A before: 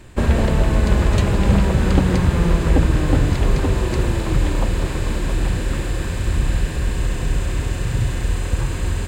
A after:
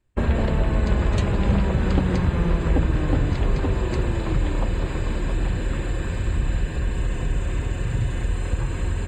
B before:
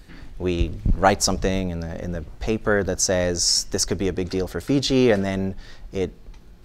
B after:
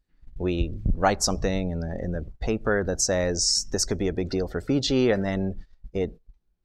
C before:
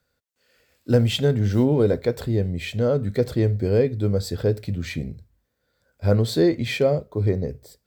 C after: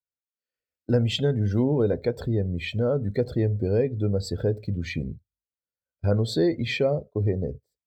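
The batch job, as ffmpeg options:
ffmpeg -i in.wav -filter_complex "[0:a]agate=range=-16dB:threshold=-35dB:ratio=16:detection=peak,afftdn=noise_reduction=16:noise_floor=-39,asplit=2[link_01][link_02];[link_02]acompressor=threshold=-25dB:ratio=6,volume=2.5dB[link_03];[link_01][link_03]amix=inputs=2:normalize=0,volume=-7dB" out.wav

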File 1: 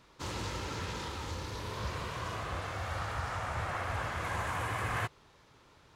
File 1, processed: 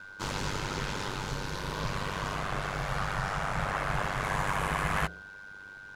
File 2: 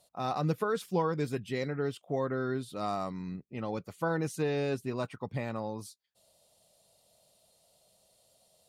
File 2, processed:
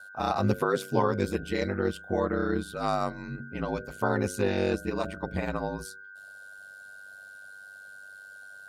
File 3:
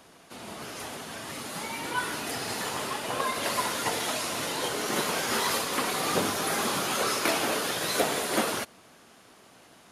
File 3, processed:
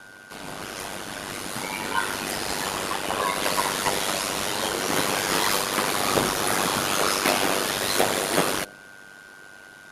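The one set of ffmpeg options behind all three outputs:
ffmpeg -i in.wav -af "bandreject=frequency=61.56:width_type=h:width=4,bandreject=frequency=123.12:width_type=h:width=4,bandreject=frequency=184.68:width_type=h:width=4,bandreject=frequency=246.24:width_type=h:width=4,bandreject=frequency=307.8:width_type=h:width=4,bandreject=frequency=369.36:width_type=h:width=4,bandreject=frequency=430.92:width_type=h:width=4,bandreject=frequency=492.48:width_type=h:width=4,bandreject=frequency=554.04:width_type=h:width=4,bandreject=frequency=615.6:width_type=h:width=4,bandreject=frequency=677.16:width_type=h:width=4,aeval=exprs='val(0)+0.00355*sin(2*PI*1500*n/s)':channel_layout=same,aeval=exprs='val(0)*sin(2*PI*49*n/s)':channel_layout=same,volume=7.5dB" out.wav

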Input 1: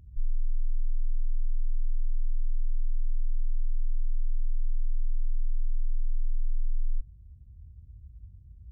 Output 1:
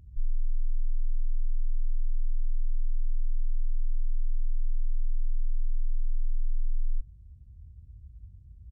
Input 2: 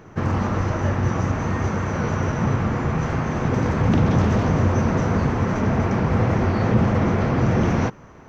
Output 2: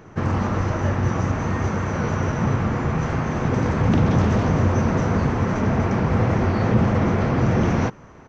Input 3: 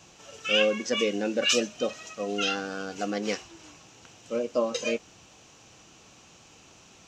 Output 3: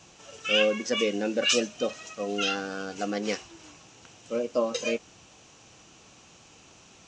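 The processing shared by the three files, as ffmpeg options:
ffmpeg -i in.wav -af "aresample=22050,aresample=44100" out.wav

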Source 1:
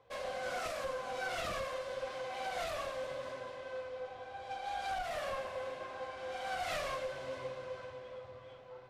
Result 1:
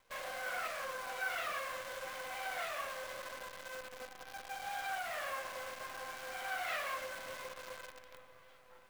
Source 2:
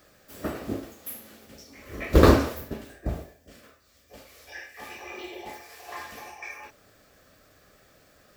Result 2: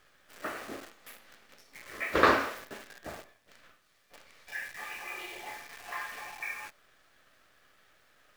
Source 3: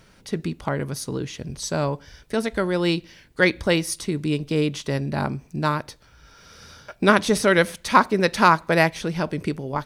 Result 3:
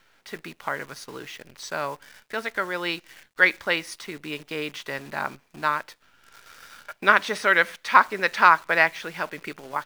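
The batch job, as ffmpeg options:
ffmpeg -i in.wav -af "bandpass=frequency=1700:width_type=q:width=1.1:csg=0,acrusher=bits=9:dc=4:mix=0:aa=0.000001,volume=3.5dB" out.wav

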